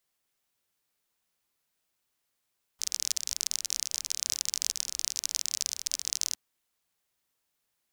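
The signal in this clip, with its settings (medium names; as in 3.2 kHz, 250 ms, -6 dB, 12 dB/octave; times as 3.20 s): rain from filtered ticks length 3.56 s, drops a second 37, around 5.8 kHz, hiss -30 dB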